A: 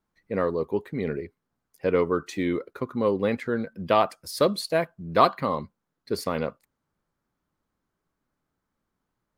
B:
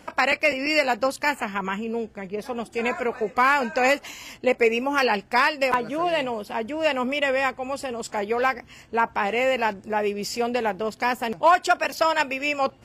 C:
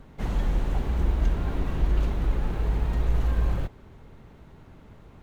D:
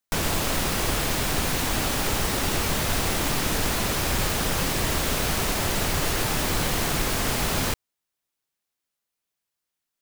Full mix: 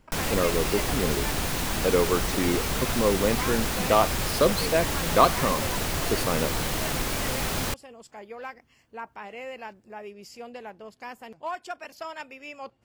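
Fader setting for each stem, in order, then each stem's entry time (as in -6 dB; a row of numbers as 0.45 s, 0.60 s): 0.0 dB, -16.0 dB, -13.0 dB, -3.5 dB; 0.00 s, 0.00 s, 0.00 s, 0.00 s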